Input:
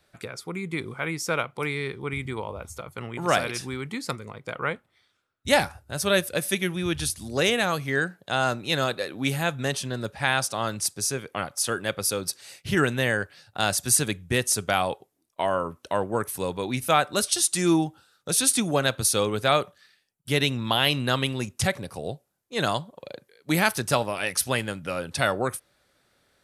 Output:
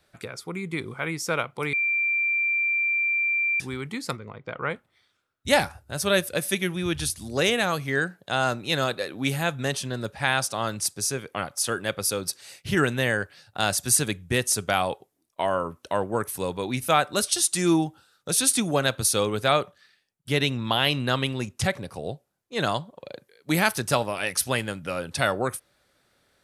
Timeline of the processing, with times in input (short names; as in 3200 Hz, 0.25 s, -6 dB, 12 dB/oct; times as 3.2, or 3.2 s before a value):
1.73–3.6 bleep 2360 Hz -21 dBFS
4.17–4.7 air absorption 210 m
19.52–23.14 high shelf 7100 Hz -6 dB